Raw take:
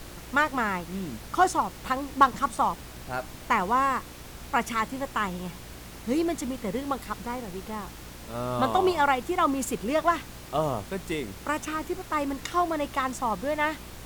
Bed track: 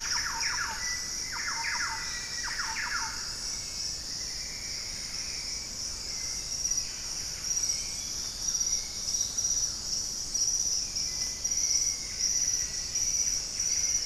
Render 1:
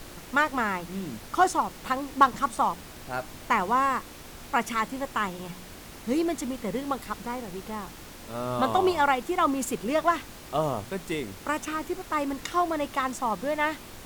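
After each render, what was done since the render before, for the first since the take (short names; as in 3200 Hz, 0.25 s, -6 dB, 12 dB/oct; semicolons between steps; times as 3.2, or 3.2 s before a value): de-hum 60 Hz, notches 3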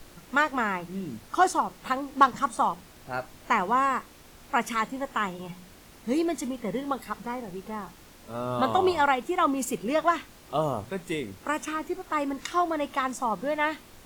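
noise print and reduce 7 dB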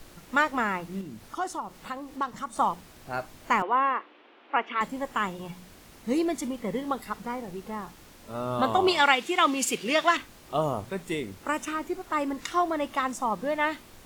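1.01–2.56 compressor 1.5:1, threshold -44 dBFS; 3.62–4.81 elliptic band-pass 300–3100 Hz, stop band 50 dB; 8.88–10.17 weighting filter D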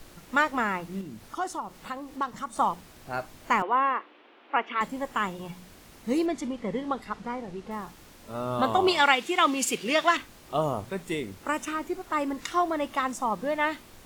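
6.26–7.71 air absorption 67 m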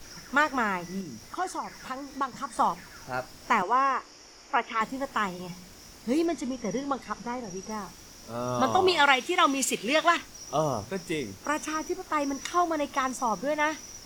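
add bed track -17 dB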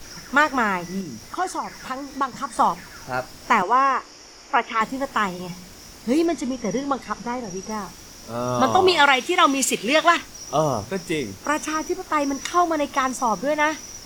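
gain +6 dB; limiter -3 dBFS, peak gain reduction 3 dB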